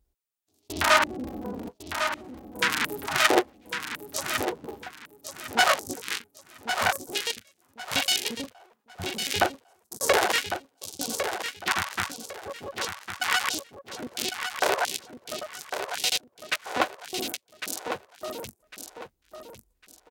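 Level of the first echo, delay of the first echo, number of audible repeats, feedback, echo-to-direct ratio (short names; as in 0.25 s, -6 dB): -8.0 dB, 1.103 s, 3, 27%, -7.5 dB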